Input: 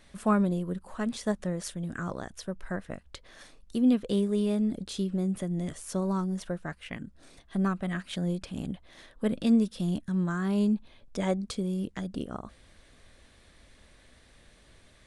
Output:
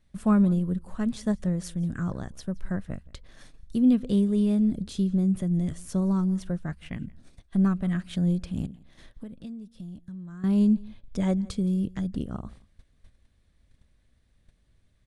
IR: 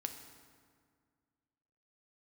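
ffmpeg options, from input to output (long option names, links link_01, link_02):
-filter_complex "[0:a]agate=range=-14dB:threshold=-52dB:ratio=16:detection=peak,bass=frequency=250:gain=13,treble=frequency=4000:gain=1,asettb=1/sr,asplit=3[link_01][link_02][link_03];[link_01]atrim=end=8.664[link_04];[link_02]atrim=start=8.66:end=10.44,asetpts=PTS-STARTPTS,afade=type=in:duration=0.004:curve=qsin,afade=type=out:start_time=1.776:duration=0.004:curve=qsin,acompressor=threshold=-36dB:ratio=6[link_05];[link_03]atrim=start=10.436[link_06];[link_04][link_05]acrossfade=duration=0.004:curve1=hsin:curve2=qsin[link_07];[link_07][link_06]acrossfade=duration=0.004:curve1=qsin:curve2=hsin,asplit=2[link_08][link_09];[link_09]aecho=0:1:170:0.0668[link_10];[link_08][link_10]amix=inputs=2:normalize=0,volume=-3.5dB"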